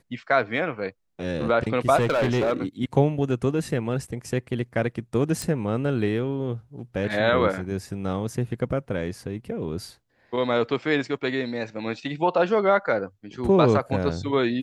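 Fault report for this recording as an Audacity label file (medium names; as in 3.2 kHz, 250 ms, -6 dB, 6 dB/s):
1.960000	2.530000	clipped -18 dBFS
5.420000	5.420000	pop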